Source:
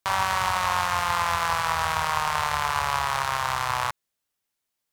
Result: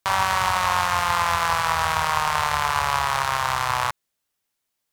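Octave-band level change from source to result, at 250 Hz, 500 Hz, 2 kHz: no reading, +3.0 dB, +3.0 dB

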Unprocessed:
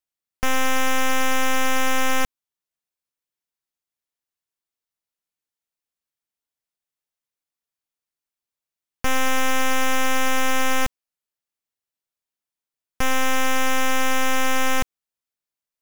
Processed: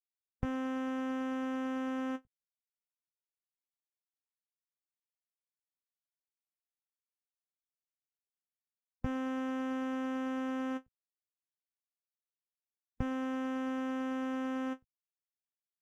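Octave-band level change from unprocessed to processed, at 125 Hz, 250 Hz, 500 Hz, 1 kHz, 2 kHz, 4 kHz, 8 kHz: -8.0 dB, -4.0 dB, -12.5 dB, -18.0 dB, -21.5 dB, -25.5 dB, under -30 dB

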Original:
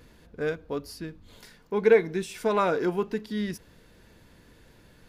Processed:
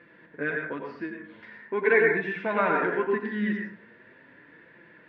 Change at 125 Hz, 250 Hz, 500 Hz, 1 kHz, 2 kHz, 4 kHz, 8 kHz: -2.0 dB, +0.5 dB, -1.5 dB, +1.5 dB, +9.0 dB, no reading, under -30 dB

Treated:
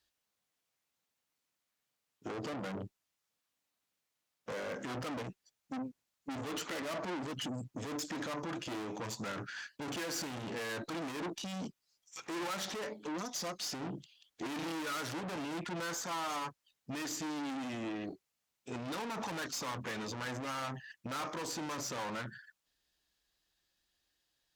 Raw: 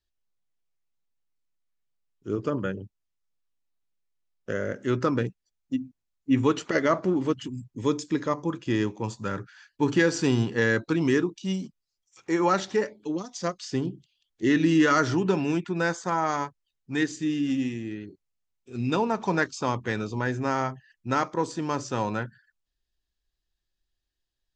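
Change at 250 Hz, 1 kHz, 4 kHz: -14.5 dB, -11.0 dB, -4.0 dB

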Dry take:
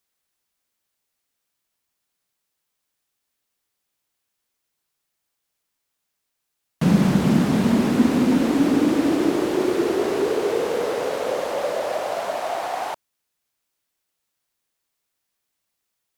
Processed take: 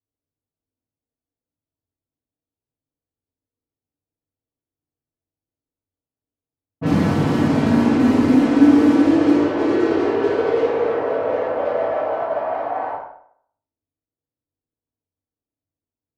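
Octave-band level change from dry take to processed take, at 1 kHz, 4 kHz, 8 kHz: +3.0 dB, -3.0 dB, no reading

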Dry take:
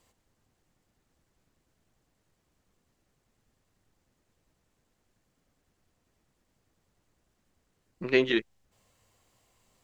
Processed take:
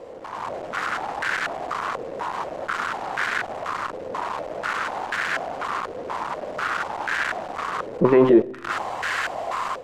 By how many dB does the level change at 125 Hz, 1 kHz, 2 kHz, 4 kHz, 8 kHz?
+14.0 dB, +32.0 dB, +14.5 dB, +7.0 dB, no reading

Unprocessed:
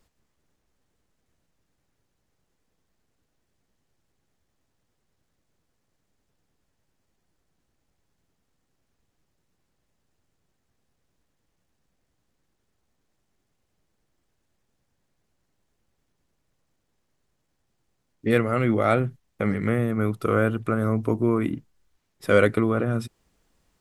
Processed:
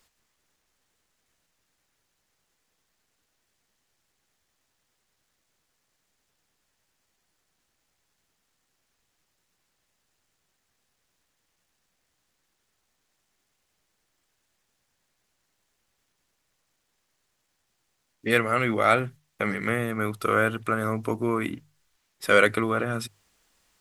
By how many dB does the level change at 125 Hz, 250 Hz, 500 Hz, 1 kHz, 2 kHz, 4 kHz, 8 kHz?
-7.0 dB, -5.0 dB, -2.5 dB, +3.0 dB, +4.5 dB, +6.5 dB, no reading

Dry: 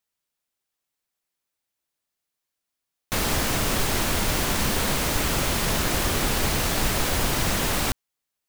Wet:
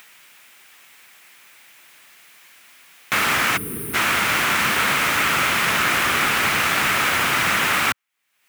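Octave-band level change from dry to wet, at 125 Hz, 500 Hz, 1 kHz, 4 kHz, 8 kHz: -6.0 dB, -1.0 dB, +8.0 dB, +4.5 dB, +0.5 dB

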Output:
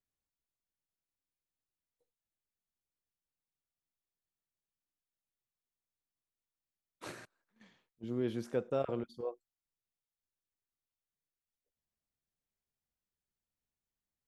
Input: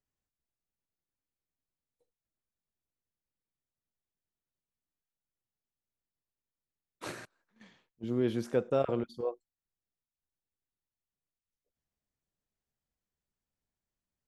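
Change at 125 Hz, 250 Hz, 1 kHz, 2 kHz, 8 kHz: -5.0 dB, -5.0 dB, -5.0 dB, -5.0 dB, -5.0 dB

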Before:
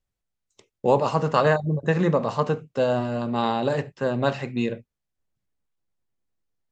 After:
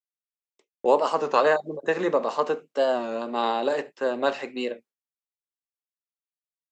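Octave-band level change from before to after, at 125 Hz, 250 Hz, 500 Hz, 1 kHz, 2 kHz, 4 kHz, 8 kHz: -21.5 dB, -6.5 dB, 0.0 dB, 0.0 dB, 0.0 dB, +0.5 dB, no reading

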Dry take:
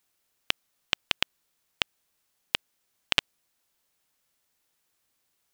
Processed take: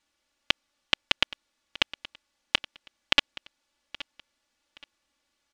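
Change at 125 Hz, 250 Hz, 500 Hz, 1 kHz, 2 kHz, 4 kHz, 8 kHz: -2.0 dB, +4.5 dB, +3.0 dB, +3.5 dB, +3.0 dB, +3.0 dB, -1.5 dB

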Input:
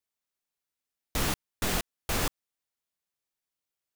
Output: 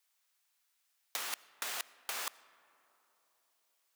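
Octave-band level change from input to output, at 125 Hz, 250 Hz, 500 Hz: under -35 dB, -28.0 dB, -16.5 dB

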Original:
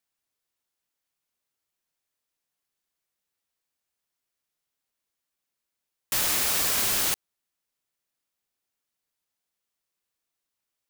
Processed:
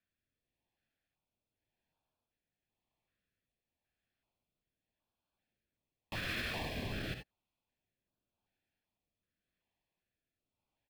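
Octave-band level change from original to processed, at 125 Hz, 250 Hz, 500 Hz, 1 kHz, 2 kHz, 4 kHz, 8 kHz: +1.5 dB, -2.0 dB, -6.5 dB, -12.0 dB, -7.5 dB, -14.0 dB, -30.5 dB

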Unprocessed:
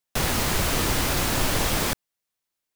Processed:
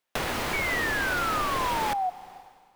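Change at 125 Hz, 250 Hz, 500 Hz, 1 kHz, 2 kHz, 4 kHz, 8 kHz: -11.0 dB, -7.0 dB, -3.0 dB, +3.5 dB, +2.0 dB, -7.0 dB, -12.0 dB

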